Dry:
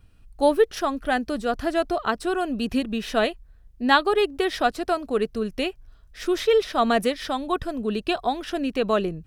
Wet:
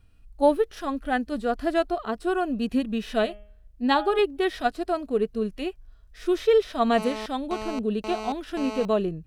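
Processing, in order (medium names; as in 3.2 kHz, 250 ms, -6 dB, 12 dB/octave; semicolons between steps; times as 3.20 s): harmonic-percussive split percussive -12 dB; 3.22–4.19 s: de-hum 207.3 Hz, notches 17; 6.98–8.85 s: mobile phone buzz -34 dBFS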